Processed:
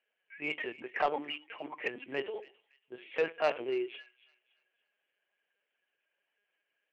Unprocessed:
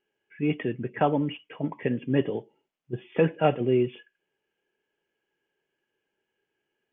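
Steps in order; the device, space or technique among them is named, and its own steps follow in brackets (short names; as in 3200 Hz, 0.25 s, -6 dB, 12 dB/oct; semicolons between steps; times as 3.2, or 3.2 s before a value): 1.2–3.1 notches 50/100/150/200/250/300/350/400/450/500 Hz; talking toy (LPC vocoder at 8 kHz pitch kept; HPF 650 Hz 12 dB/oct; bell 2300 Hz +6 dB 0.38 oct; soft clip -18.5 dBFS, distortion -16 dB); thin delay 0.282 s, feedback 35%, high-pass 2400 Hz, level -16 dB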